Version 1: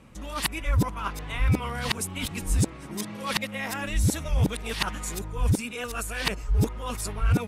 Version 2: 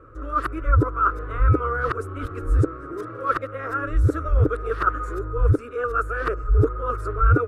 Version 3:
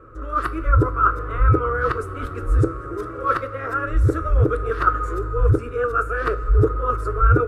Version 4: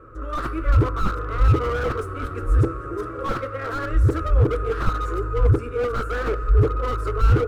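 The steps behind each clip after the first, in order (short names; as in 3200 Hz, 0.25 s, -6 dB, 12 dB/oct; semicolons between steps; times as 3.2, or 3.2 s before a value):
EQ curve 120 Hz 0 dB, 200 Hz -28 dB, 290 Hz +1 dB, 470 Hz +6 dB, 880 Hz -17 dB, 1300 Hz +13 dB, 2000 Hz -15 dB, 3200 Hz -24 dB, 14000 Hz -28 dB; gain +5.5 dB
two-slope reverb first 0.27 s, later 4.2 s, from -18 dB, DRR 8.5 dB; gain +2 dB
tracing distortion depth 0.14 ms; slew limiter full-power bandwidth 62 Hz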